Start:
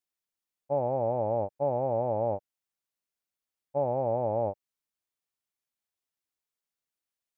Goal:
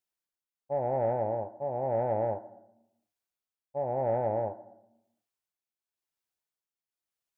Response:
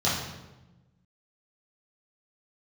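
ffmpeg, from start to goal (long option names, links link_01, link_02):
-filter_complex "[0:a]tremolo=f=0.96:d=0.59,asoftclip=type=tanh:threshold=-19.5dB,asplit=2[link_01][link_02];[link_02]highpass=300,equalizer=frequency=330:width_type=q:width=4:gain=10,equalizer=frequency=490:width_type=q:width=4:gain=-8,equalizer=frequency=710:width_type=q:width=4:gain=8,equalizer=frequency=1000:width_type=q:width=4:gain=5,equalizer=frequency=1500:width_type=q:width=4:gain=9,lowpass=frequency=2100:width=0.5412,lowpass=frequency=2100:width=1.3066[link_03];[1:a]atrim=start_sample=2205,asetrate=57330,aresample=44100[link_04];[link_03][link_04]afir=irnorm=-1:irlink=0,volume=-23dB[link_05];[link_01][link_05]amix=inputs=2:normalize=0"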